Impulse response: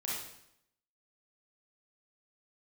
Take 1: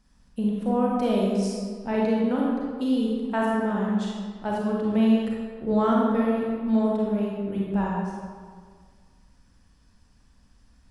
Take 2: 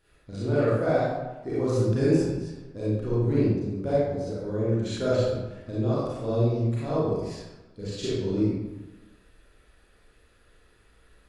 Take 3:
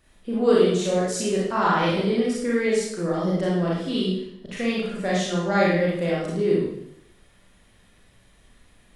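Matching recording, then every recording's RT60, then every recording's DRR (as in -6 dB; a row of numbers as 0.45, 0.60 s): 3; 1.8, 1.1, 0.75 s; -4.0, -9.5, -6.0 dB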